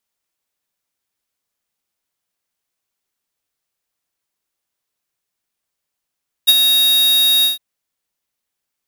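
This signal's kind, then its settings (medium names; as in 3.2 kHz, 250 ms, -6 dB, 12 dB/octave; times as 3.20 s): ADSR square 3.76 kHz, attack 20 ms, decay 37 ms, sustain -6 dB, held 0.97 s, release 139 ms -7 dBFS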